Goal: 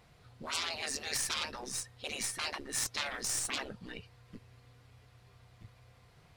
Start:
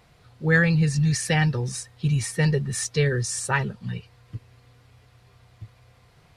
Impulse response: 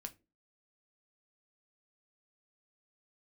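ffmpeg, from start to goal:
-af "aeval=exprs='0.447*(cos(1*acos(clip(val(0)/0.447,-1,1)))-cos(1*PI/2))+0.0708*(cos(2*acos(clip(val(0)/0.447,-1,1)))-cos(2*PI/2))+0.0398*(cos(5*acos(clip(val(0)/0.447,-1,1)))-cos(5*PI/2))+0.0316*(cos(6*acos(clip(val(0)/0.447,-1,1)))-cos(6*PI/2))+0.0562*(cos(7*acos(clip(val(0)/0.447,-1,1)))-cos(7*PI/2))':c=same,afftfilt=real='re*lt(hypot(re,im),0.0794)':imag='im*lt(hypot(re,im),0.0794)':win_size=1024:overlap=0.75"

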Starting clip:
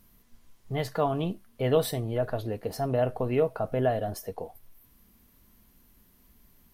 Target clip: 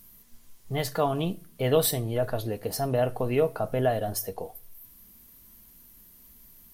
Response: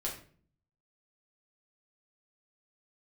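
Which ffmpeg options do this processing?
-filter_complex "[0:a]highshelf=f=4.7k:g=11.5,asplit=2[a][b];[1:a]atrim=start_sample=2205[c];[b][c]afir=irnorm=-1:irlink=0,volume=-18dB[d];[a][d]amix=inputs=2:normalize=0"

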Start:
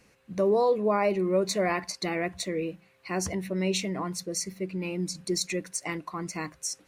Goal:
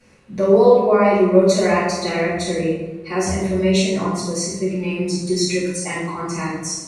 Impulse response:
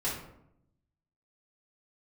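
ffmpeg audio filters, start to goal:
-filter_complex "[1:a]atrim=start_sample=2205,asetrate=22491,aresample=44100[a];[0:a][a]afir=irnorm=-1:irlink=0,volume=-1.5dB"

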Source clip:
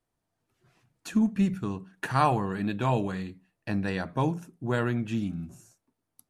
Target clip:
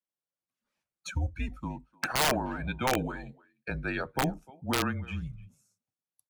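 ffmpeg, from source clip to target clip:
-filter_complex "[0:a]highpass=f=260:w=0.5412,highpass=f=260:w=1.3066,afftdn=nr=19:nf=-40,highshelf=f=2.1k:g=6.5,afreqshift=-140,asplit=2[a][b];[b]adelay=300,highpass=300,lowpass=3.4k,asoftclip=type=hard:threshold=-18dB,volume=-23dB[c];[a][c]amix=inputs=2:normalize=0,aeval=exprs='(mod(7.94*val(0)+1,2)-1)/7.94':c=same"

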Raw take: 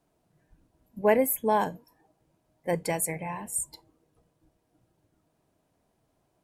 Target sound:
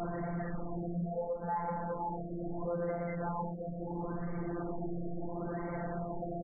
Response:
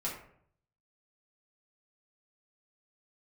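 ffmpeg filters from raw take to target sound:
-filter_complex "[0:a]aeval=exprs='val(0)+0.5*0.0447*sgn(val(0))':c=same,asuperstop=centerf=1500:order=4:qfactor=7.5,highshelf=f=11k:g=-11,bandreject=f=60:t=h:w=6,bandreject=f=120:t=h:w=6,bandreject=f=180:t=h:w=6,asplit=2[a][b];[b]adelay=48,volume=-11dB[c];[a][c]amix=inputs=2:normalize=0,aecho=1:1:119|338|511|723:0.596|0.158|0.299|0.282,asplit=2[d][e];[1:a]atrim=start_sample=2205[f];[e][f]afir=irnorm=-1:irlink=0,volume=-5dB[g];[d][g]amix=inputs=2:normalize=0,acompressor=threshold=-30dB:ratio=12,afftfilt=real='hypot(re,im)*cos(PI*b)':imag='0':win_size=1024:overlap=0.75,aeval=exprs='(tanh(39.8*val(0)+0.1)-tanh(0.1))/39.8':c=same,afftfilt=real='re*lt(b*sr/1024,710*pow(2300/710,0.5+0.5*sin(2*PI*0.74*pts/sr)))':imag='im*lt(b*sr/1024,710*pow(2300/710,0.5+0.5*sin(2*PI*0.74*pts/sr)))':win_size=1024:overlap=0.75,volume=4dB"

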